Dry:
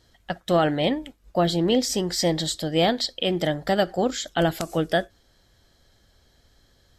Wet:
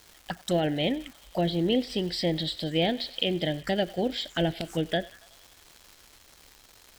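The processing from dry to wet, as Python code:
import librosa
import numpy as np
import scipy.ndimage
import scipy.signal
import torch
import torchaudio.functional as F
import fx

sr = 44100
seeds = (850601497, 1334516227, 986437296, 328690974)

y = fx.high_shelf(x, sr, hz=3400.0, db=11.5)
y = fx.echo_thinned(y, sr, ms=93, feedback_pct=74, hz=660.0, wet_db=-20)
y = fx.env_phaser(y, sr, low_hz=170.0, high_hz=1200.0, full_db=-21.0)
y = fx.env_lowpass_down(y, sr, base_hz=2500.0, full_db=-19.0)
y = fx.dmg_crackle(y, sr, seeds[0], per_s=520.0, level_db=-37.0)
y = y * 10.0 ** (-3.0 / 20.0)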